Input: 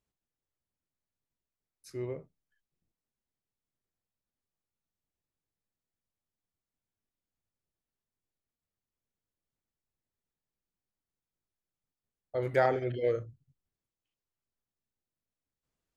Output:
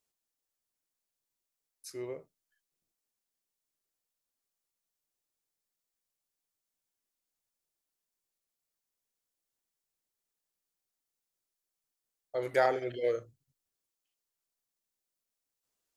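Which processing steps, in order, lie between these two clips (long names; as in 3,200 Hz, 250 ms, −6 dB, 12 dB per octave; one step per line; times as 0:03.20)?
bass and treble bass −12 dB, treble +8 dB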